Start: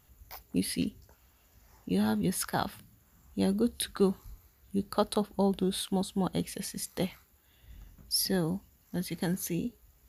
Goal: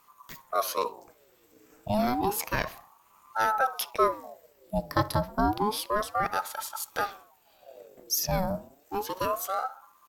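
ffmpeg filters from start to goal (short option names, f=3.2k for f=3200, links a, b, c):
-filter_complex "[0:a]asetrate=49501,aresample=44100,atempo=0.890899,asplit=2[a][b];[b]adelay=64,lowpass=f=1.4k:p=1,volume=-16dB,asplit=2[c][d];[d]adelay=64,lowpass=f=1.4k:p=1,volume=0.5,asplit=2[e][f];[f]adelay=64,lowpass=f=1.4k:p=1,volume=0.5,asplit=2[g][h];[h]adelay=64,lowpass=f=1.4k:p=1,volume=0.5[i];[a][c][e][g][i]amix=inputs=5:normalize=0,aeval=exprs='val(0)*sin(2*PI*740*n/s+740*0.5/0.3*sin(2*PI*0.3*n/s))':c=same,volume=4.5dB"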